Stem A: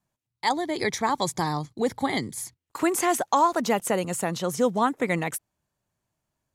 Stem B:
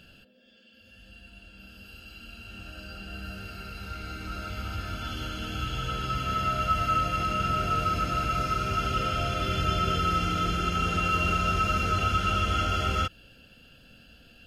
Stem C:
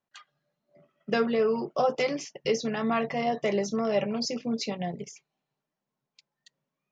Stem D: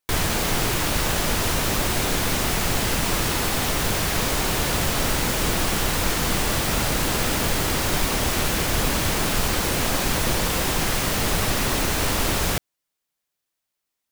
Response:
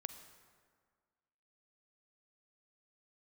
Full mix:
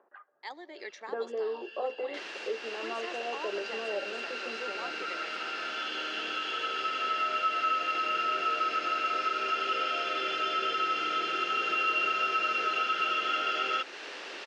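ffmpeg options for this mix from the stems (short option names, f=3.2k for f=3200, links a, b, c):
-filter_complex "[0:a]volume=-18dB,asplit=2[a][b];[b]volume=-12dB[c];[1:a]dynaudnorm=f=340:g=3:m=10.5dB,adelay=750,volume=-7.5dB[d];[2:a]lowpass=f=1.2k:w=0.5412,lowpass=f=1.2k:w=1.3066,acompressor=mode=upward:threshold=-38dB:ratio=2.5,volume=-5.5dB,asplit=2[e][f];[f]volume=-14dB[g];[3:a]adelay=2050,volume=-17dB[h];[4:a]atrim=start_sample=2205[i];[c][g]amix=inputs=2:normalize=0[j];[j][i]afir=irnorm=-1:irlink=0[k];[a][d][e][h][k]amix=inputs=5:normalize=0,highpass=f=370:w=0.5412,highpass=f=370:w=1.3066,equalizer=f=370:t=q:w=4:g=3,equalizer=f=690:t=q:w=4:g=-3,equalizer=f=1k:t=q:w=4:g=-3,equalizer=f=1.7k:t=q:w=4:g=5,equalizer=f=2.7k:t=q:w=4:g=4,lowpass=f=5.3k:w=0.5412,lowpass=f=5.3k:w=1.3066,acompressor=threshold=-35dB:ratio=1.5"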